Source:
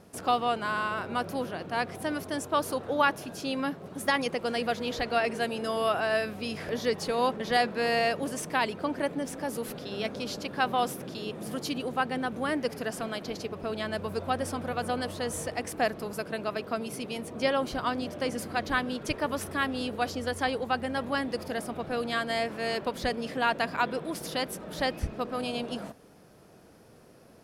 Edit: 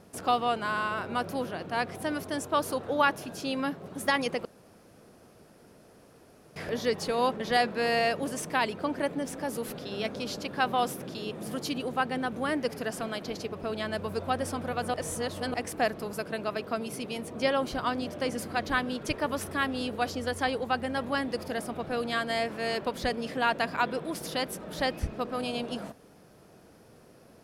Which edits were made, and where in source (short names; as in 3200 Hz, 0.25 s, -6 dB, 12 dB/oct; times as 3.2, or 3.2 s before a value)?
4.45–6.56 room tone
14.94–15.54 reverse